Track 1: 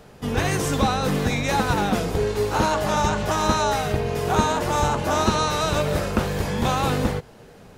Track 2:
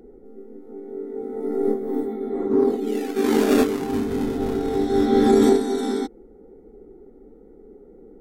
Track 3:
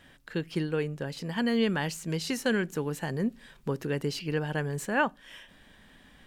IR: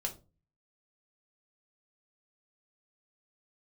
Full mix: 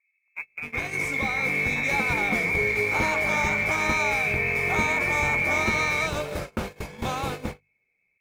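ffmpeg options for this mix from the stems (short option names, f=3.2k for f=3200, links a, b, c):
-filter_complex "[0:a]bandreject=f=50:t=h:w=6,bandreject=f=100:t=h:w=6,bandreject=f=150:t=h:w=6,bandreject=f=200:t=h:w=6,bandreject=f=250:t=h:w=6,dynaudnorm=f=380:g=7:m=12dB,adelay=400,volume=-11dB[a];[1:a]volume=2.5dB[b];[2:a]acrusher=bits=4:mix=0:aa=0.5,volume=-4dB[c];[b][c]amix=inputs=2:normalize=0,lowpass=f=2.2k:t=q:w=0.5098,lowpass=f=2.2k:t=q:w=0.6013,lowpass=f=2.2k:t=q:w=0.9,lowpass=f=2.2k:t=q:w=2.563,afreqshift=-2600,alimiter=limit=-19dB:level=0:latency=1,volume=0dB[d];[a][d]amix=inputs=2:normalize=0,acrusher=bits=8:mode=log:mix=0:aa=0.000001,agate=range=-30dB:threshold=-30dB:ratio=16:detection=peak"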